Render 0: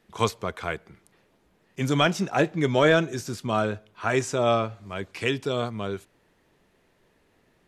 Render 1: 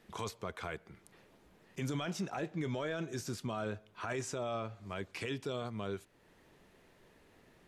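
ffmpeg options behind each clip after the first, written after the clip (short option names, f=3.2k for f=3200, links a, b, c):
-af "acompressor=threshold=-51dB:ratio=1.5,alimiter=level_in=5dB:limit=-24dB:level=0:latency=1:release=13,volume=-5dB,volume=1dB"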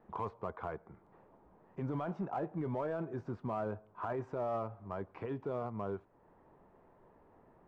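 -filter_complex "[0:a]lowpass=f=960:t=q:w=2.1,asplit=2[a][b];[b]asoftclip=type=hard:threshold=-32dB,volume=-7dB[c];[a][c]amix=inputs=2:normalize=0,volume=-4dB"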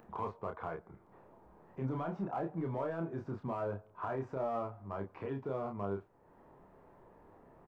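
-filter_complex "[0:a]acompressor=mode=upward:threshold=-54dB:ratio=2.5,asplit=2[a][b];[b]adelay=30,volume=-4dB[c];[a][c]amix=inputs=2:normalize=0,volume=-1dB"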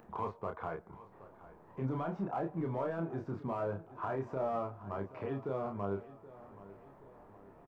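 -af "aecho=1:1:775|1550|2325|3100:0.141|0.0692|0.0339|0.0166,volume=1dB"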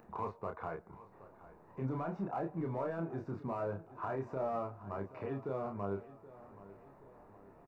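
-af "asuperstop=centerf=3200:order=4:qfactor=7.5,volume=-1.5dB"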